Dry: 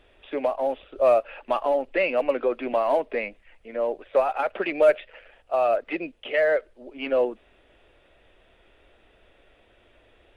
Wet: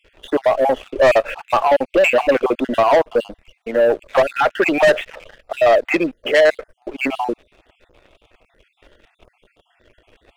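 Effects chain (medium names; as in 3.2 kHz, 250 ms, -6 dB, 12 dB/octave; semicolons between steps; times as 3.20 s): random holes in the spectrogram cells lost 44%; wavefolder -15 dBFS; waveshaping leveller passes 2; trim +7.5 dB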